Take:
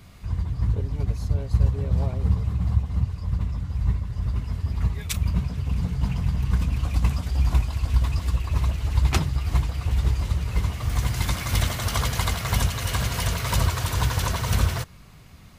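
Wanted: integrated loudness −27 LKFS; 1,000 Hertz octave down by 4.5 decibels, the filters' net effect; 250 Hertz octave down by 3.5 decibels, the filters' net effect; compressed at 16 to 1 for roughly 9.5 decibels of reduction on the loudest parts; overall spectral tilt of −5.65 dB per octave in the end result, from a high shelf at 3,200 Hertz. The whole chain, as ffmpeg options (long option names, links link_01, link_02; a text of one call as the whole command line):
ffmpeg -i in.wav -af "equalizer=frequency=250:width_type=o:gain=-6.5,equalizer=frequency=1000:width_type=o:gain=-4,highshelf=frequency=3200:gain=-9,acompressor=threshold=-24dB:ratio=16,volume=4.5dB" out.wav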